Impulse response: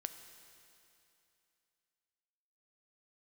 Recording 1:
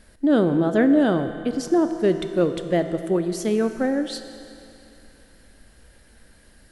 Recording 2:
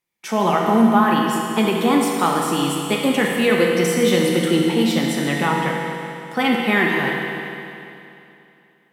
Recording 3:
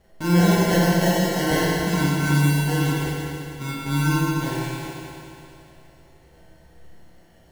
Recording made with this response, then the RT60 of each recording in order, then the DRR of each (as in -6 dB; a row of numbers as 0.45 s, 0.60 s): 1; 2.8 s, 2.8 s, 2.8 s; 8.0 dB, -2.0 dB, -8.5 dB